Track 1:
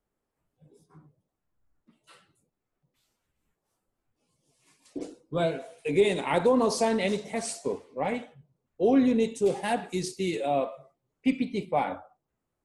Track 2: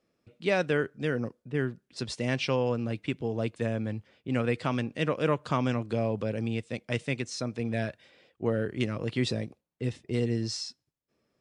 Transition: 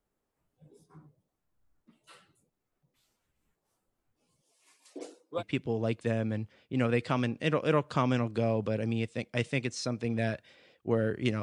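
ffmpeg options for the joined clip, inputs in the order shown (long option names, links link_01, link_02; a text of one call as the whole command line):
ffmpeg -i cue0.wav -i cue1.wav -filter_complex "[0:a]asettb=1/sr,asplit=3[link_01][link_02][link_03];[link_01]atrim=end=4.424[link_04];[link_02]atrim=start=4.42:end=5.43,asetpts=PTS-STARTPTS,afade=type=in:duration=0.004:curve=qsin,afade=type=out:start_time=1.006:duration=0.004:curve=qsin,highpass=480[link_05];[link_03]atrim=start=5.426[link_06];[link_04][link_05]acrossfade=duration=0.004:curve1=hsin:curve2=qsin[link_07];[link_07][link_06]acrossfade=duration=0.004:curve1=qsin:curve2=hsin,apad=whole_dur=11.42,atrim=end=11.42,atrim=end=5.43,asetpts=PTS-STARTPTS[link_08];[1:a]atrim=start=2.92:end=8.97,asetpts=PTS-STARTPTS[link_09];[link_08][link_09]acrossfade=duration=0.06:curve1=tri:curve2=tri" out.wav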